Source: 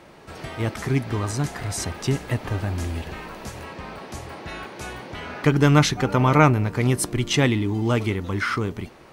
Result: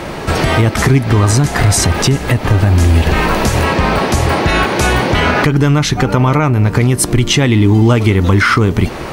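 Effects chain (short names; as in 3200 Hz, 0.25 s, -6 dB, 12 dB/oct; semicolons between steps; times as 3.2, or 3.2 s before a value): low shelf 100 Hz +6.5 dB; compressor 20:1, threshold -29 dBFS, peak gain reduction 21 dB; maximiser +24.5 dB; gain -1 dB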